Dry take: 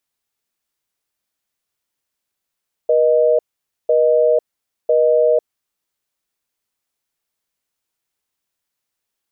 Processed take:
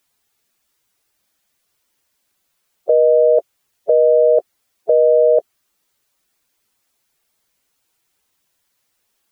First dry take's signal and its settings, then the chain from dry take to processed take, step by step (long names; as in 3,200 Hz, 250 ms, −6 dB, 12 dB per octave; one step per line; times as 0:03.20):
call progress tone busy tone, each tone −13.5 dBFS 2.67 s
spectral magnitudes quantised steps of 15 dB
in parallel at −1 dB: compressor whose output falls as the input rises −20 dBFS, ratio −0.5